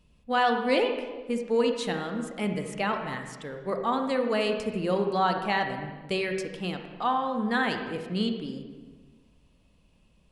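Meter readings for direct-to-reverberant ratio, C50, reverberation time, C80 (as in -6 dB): 4.5 dB, 5.5 dB, 1.4 s, 7.5 dB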